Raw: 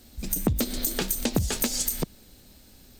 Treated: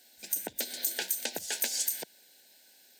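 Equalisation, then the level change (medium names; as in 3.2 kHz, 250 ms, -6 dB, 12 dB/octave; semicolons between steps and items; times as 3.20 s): high-pass 700 Hz 12 dB/octave; Butterworth band-stop 1.2 kHz, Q 1.6; peaking EQ 1.5 kHz +12 dB 0.21 oct; -3.0 dB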